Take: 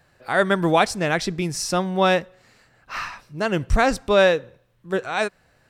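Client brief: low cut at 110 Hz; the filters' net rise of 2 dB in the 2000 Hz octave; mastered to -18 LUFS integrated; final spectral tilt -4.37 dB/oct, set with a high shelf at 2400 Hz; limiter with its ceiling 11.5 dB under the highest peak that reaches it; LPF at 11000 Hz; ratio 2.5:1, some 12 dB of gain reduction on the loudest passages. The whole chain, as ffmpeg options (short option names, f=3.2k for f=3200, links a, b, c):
-af "highpass=110,lowpass=11k,equalizer=f=2k:t=o:g=4.5,highshelf=f=2.4k:g=-4,acompressor=threshold=-31dB:ratio=2.5,volume=18.5dB,alimiter=limit=-8dB:level=0:latency=1"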